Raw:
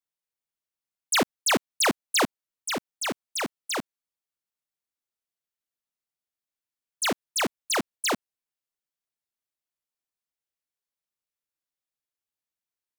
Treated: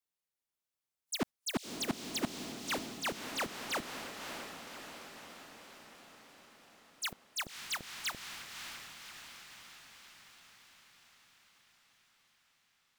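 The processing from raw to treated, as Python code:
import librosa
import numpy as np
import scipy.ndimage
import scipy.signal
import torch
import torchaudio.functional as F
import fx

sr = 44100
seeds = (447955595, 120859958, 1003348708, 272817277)

p1 = fx.auto_swell(x, sr, attack_ms=231.0)
p2 = fx.fold_sine(p1, sr, drive_db=14, ceiling_db=-26.5)
p3 = p1 + F.gain(torch.from_numpy(p2), -4.0).numpy()
p4 = fx.noise_reduce_blind(p3, sr, reduce_db=12)
p5 = fx.echo_diffused(p4, sr, ms=585, feedback_pct=62, wet_db=-6)
y = F.gain(torch.from_numpy(p5), -4.5).numpy()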